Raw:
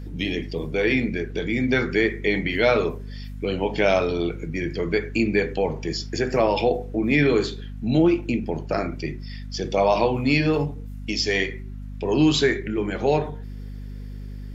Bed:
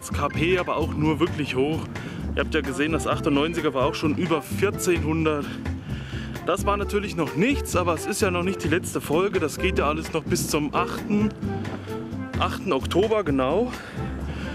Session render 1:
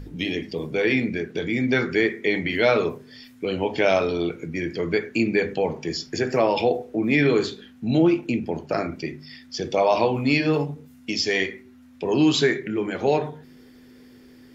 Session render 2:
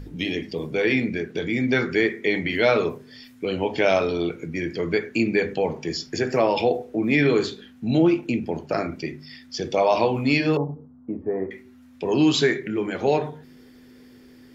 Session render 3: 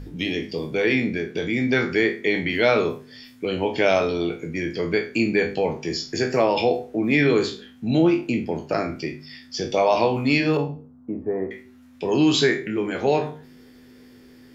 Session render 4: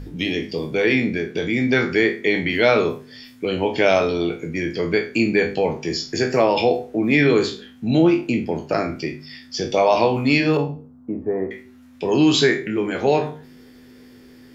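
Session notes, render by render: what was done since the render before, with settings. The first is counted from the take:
de-hum 50 Hz, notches 4
10.57–11.51 s: steep low-pass 1.2 kHz
spectral sustain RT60 0.31 s
trim +2.5 dB

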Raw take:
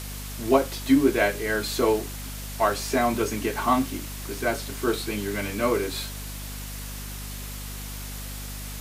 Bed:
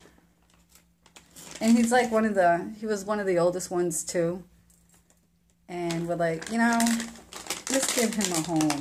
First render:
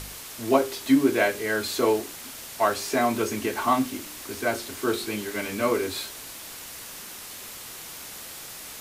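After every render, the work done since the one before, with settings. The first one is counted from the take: de-hum 50 Hz, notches 8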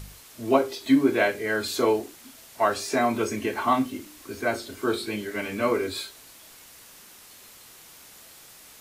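noise print and reduce 9 dB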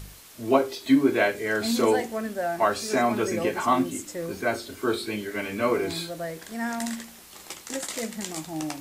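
add bed -7 dB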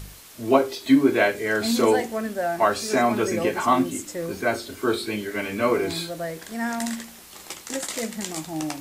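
trim +2.5 dB

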